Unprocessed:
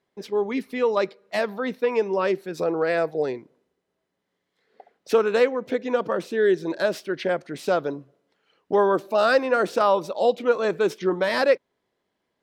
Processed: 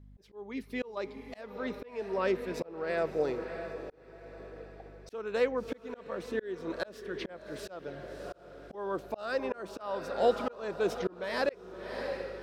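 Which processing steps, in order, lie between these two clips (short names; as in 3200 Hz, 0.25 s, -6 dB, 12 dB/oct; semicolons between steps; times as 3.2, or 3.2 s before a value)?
7.87–8.75 comb 1.5 ms, depth 79%; diffused feedback echo 0.657 s, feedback 46%, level -11 dB; hum 50 Hz, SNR 24 dB; auto swell 0.48 s; gain -5.5 dB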